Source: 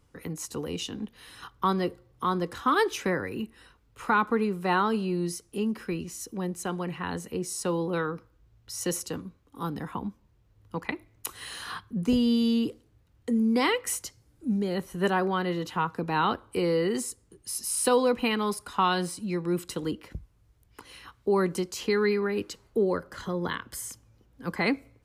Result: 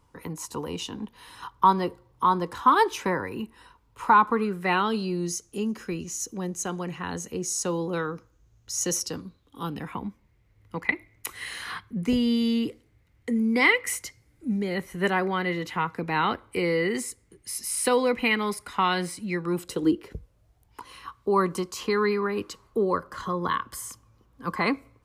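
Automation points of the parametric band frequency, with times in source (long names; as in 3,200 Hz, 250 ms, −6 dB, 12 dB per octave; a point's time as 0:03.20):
parametric band +13.5 dB 0.33 octaves
0:04.30 960 Hz
0:05.21 6,500 Hz
0:08.88 6,500 Hz
0:10.00 2,100 Hz
0:19.32 2,100 Hz
0:19.85 310 Hz
0:20.91 1,100 Hz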